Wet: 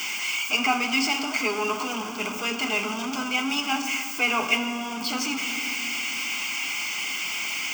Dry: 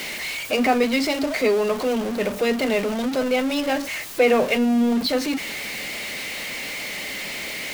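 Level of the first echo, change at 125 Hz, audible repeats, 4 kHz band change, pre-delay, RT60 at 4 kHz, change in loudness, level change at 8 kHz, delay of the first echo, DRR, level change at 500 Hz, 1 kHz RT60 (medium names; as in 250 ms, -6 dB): no echo, no reading, no echo, +2.0 dB, 4 ms, 1.5 s, -2.5 dB, +3.0 dB, no echo, 5.0 dB, -13.5 dB, 2.4 s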